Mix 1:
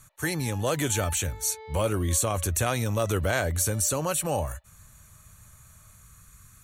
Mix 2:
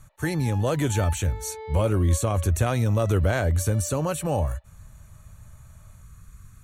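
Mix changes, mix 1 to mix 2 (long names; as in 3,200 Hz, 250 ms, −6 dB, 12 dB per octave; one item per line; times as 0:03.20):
background +4.5 dB
master: add spectral tilt −2 dB per octave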